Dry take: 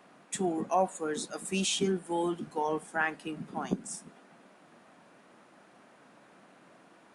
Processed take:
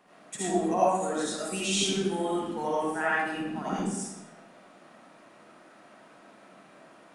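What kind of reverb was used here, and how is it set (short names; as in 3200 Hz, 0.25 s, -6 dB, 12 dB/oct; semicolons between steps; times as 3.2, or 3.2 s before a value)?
digital reverb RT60 0.88 s, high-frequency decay 0.9×, pre-delay 35 ms, DRR -8.5 dB; gain -4.5 dB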